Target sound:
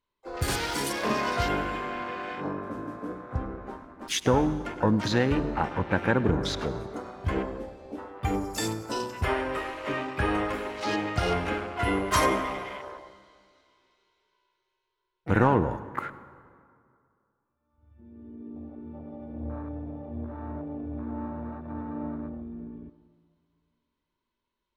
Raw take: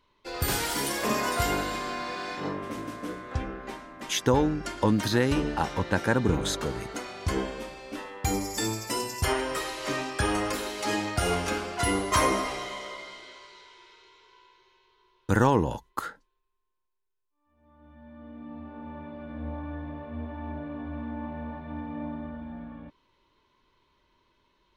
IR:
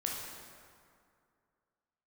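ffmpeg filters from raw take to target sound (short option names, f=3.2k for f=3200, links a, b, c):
-filter_complex "[0:a]afwtdn=0.0141,asplit=2[a][b];[b]asetrate=66075,aresample=44100,atempo=0.66742,volume=-13dB[c];[a][c]amix=inputs=2:normalize=0,asplit=2[d][e];[1:a]atrim=start_sample=2205,adelay=103[f];[e][f]afir=irnorm=-1:irlink=0,volume=-18dB[g];[d][g]amix=inputs=2:normalize=0"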